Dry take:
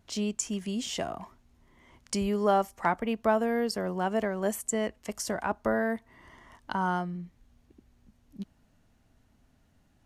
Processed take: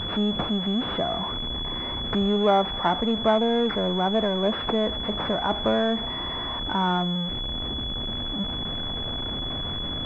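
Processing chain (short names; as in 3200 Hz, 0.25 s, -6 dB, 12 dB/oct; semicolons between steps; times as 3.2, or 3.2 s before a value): zero-crossing step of -29.5 dBFS; pulse-width modulation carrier 3400 Hz; gain +3 dB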